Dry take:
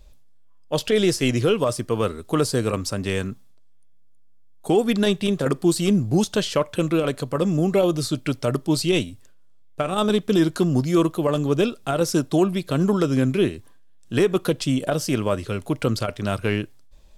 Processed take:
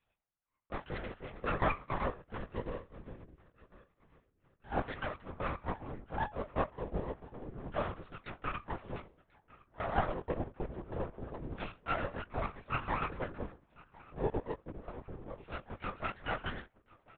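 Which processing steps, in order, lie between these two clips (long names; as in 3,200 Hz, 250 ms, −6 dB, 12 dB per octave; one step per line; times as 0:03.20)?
auto-filter low-pass saw down 0.26 Hz 260–3,100 Hz
on a send at −21.5 dB: convolution reverb RT60 0.20 s, pre-delay 3 ms
on the sum: auto-filter band-pass saw down 9.6 Hz 620–1,600 Hz
multi-voice chorus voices 4, 0.57 Hz, delay 22 ms, depth 2.6 ms
tuned comb filter 170 Hz, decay 0.23 s, harmonics odd, mix 70%
dynamic equaliser 1,000 Hz, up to +5 dB, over −53 dBFS, Q 1.4
repeating echo 1,051 ms, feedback 47%, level −22.5 dB
half-wave rectification
linear-prediction vocoder at 8 kHz whisper
0:02.22–0:04.72: parametric band 780 Hz −7.5 dB 1.6 octaves
level +6 dB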